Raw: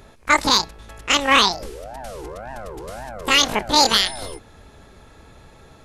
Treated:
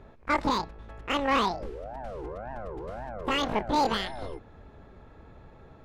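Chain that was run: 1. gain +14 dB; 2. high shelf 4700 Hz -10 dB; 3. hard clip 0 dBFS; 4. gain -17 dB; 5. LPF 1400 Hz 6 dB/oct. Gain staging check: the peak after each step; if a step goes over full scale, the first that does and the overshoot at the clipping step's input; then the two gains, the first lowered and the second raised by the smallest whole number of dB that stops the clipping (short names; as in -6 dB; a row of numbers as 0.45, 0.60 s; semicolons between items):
+10.0, +9.5, 0.0, -17.0, -17.0 dBFS; step 1, 9.5 dB; step 1 +4 dB, step 4 -7 dB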